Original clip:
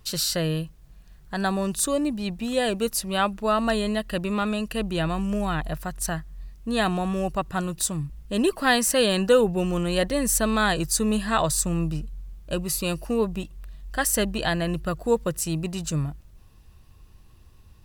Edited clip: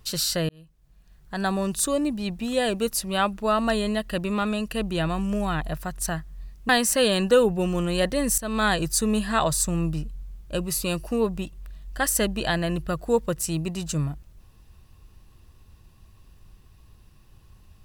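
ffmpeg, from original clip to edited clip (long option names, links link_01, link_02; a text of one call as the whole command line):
ffmpeg -i in.wav -filter_complex "[0:a]asplit=4[link_01][link_02][link_03][link_04];[link_01]atrim=end=0.49,asetpts=PTS-STARTPTS,afade=type=out:start_time=0.486:duration=0.004:curve=hsin[link_05];[link_02]atrim=start=0.49:end=6.692,asetpts=PTS-STARTPTS,afade=type=in:duration=1.04[link_06];[link_03]atrim=start=8.668:end=10.36,asetpts=PTS-STARTPTS,afade=type=out:start_time=1.688:duration=0.004:curve=hsin:silence=0.16788[link_07];[link_04]atrim=start=10.36,asetpts=PTS-STARTPTS,afade=type=in:duration=0.26:silence=0.16788[link_08];[link_05][link_06]concat=n=2:v=0:a=1[link_09];[link_07][link_08]concat=n=2:v=0:a=1[link_10];[link_09][link_10]acrossfade=duration=0.004:curve1=hsin:curve2=hsin" out.wav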